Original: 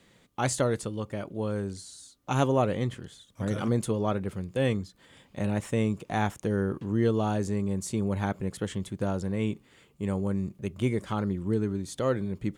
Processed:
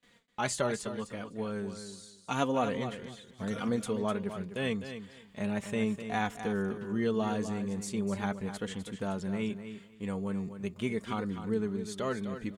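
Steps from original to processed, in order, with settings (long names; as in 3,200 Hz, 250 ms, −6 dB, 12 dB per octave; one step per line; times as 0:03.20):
parametric band 2,500 Hz +5.5 dB 2.9 octaves
noise gate with hold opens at −47 dBFS
flanger 0.8 Hz, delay 4 ms, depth 1.1 ms, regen +21%
on a send: repeating echo 253 ms, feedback 19%, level −10 dB
on the sum: level −2.5 dB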